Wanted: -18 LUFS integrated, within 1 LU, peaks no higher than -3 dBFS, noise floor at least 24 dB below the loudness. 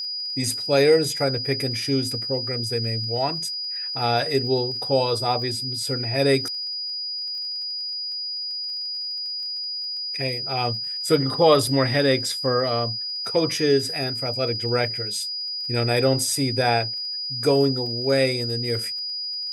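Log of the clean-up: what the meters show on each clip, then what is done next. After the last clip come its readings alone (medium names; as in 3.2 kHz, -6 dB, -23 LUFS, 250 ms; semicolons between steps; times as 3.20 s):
tick rate 29 per s; steady tone 4.9 kHz; tone level -27 dBFS; loudness -23.0 LUFS; peak level -5.0 dBFS; loudness target -18.0 LUFS
-> de-click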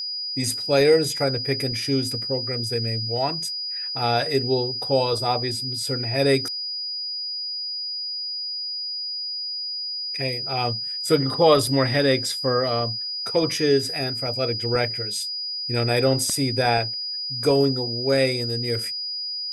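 tick rate 0.26 per s; steady tone 4.9 kHz; tone level -27 dBFS
-> band-stop 4.9 kHz, Q 30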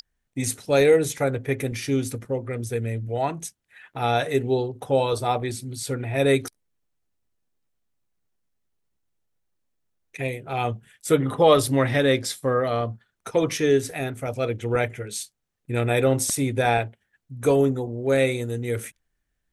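steady tone not found; loudness -24.0 LUFS; peak level -5.5 dBFS; loudness target -18.0 LUFS
-> trim +6 dB; peak limiter -3 dBFS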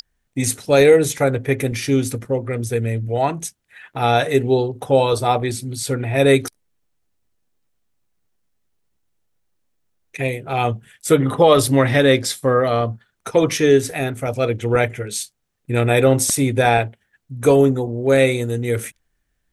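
loudness -18.0 LUFS; peak level -3.0 dBFS; noise floor -71 dBFS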